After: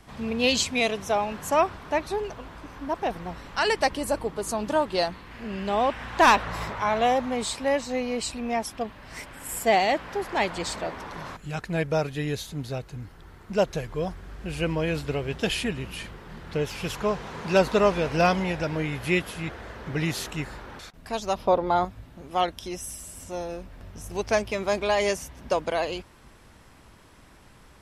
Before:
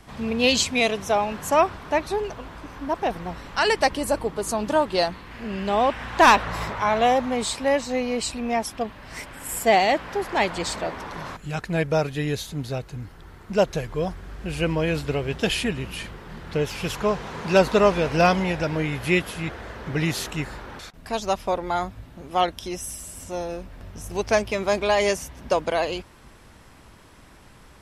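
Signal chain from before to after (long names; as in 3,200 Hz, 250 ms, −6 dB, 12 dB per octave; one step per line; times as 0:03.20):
0:21.35–0:21.85: octave-band graphic EQ 125/250/500/1,000/2,000/4,000/8,000 Hz +6/+4/+6/+5/−4/+5/−11 dB
level −3 dB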